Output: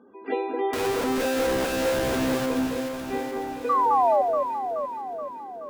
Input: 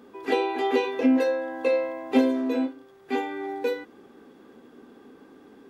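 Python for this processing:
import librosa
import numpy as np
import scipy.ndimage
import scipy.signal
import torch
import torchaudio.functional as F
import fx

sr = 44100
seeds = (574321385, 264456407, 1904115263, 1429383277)

y = scipy.signal.sosfilt(scipy.signal.butter(4, 55.0, 'highpass', fs=sr, output='sos'), x)
y = fx.spec_gate(y, sr, threshold_db=-25, keep='strong')
y = scipy.signal.sosfilt(scipy.signal.bessel(2, 2200.0, 'lowpass', norm='mag', fs=sr, output='sos'), y)
y = fx.low_shelf(y, sr, hz=73.0, db=-8.5)
y = fx.schmitt(y, sr, flips_db=-40.0, at=(0.73, 2.46))
y = fx.spec_paint(y, sr, seeds[0], shape='fall', start_s=3.69, length_s=0.53, low_hz=550.0, high_hz=1200.0, level_db=-18.0)
y = fx.echo_alternate(y, sr, ms=213, hz=1500.0, feedback_pct=77, wet_db=-3.0)
y = y * 10.0 ** (-3.0 / 20.0)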